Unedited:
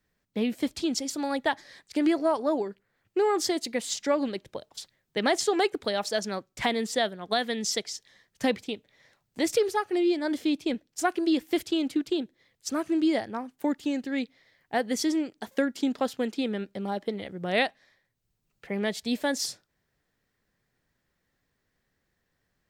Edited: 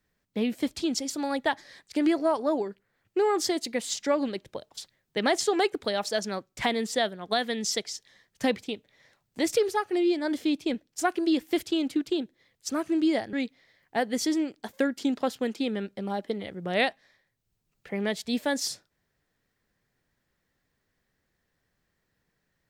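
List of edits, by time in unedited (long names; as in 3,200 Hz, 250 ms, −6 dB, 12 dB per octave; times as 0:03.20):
0:13.33–0:14.11: remove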